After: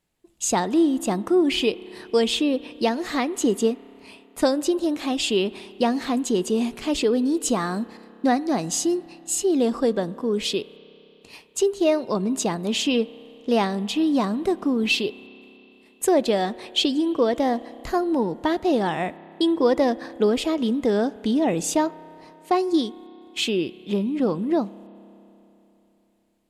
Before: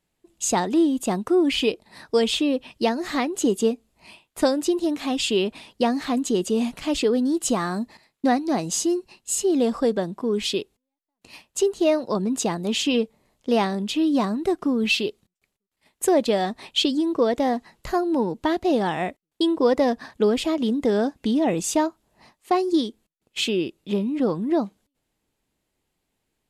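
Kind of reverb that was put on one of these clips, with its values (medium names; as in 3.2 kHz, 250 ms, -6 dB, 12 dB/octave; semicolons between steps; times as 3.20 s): spring tank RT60 3.4 s, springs 30 ms, chirp 50 ms, DRR 18.5 dB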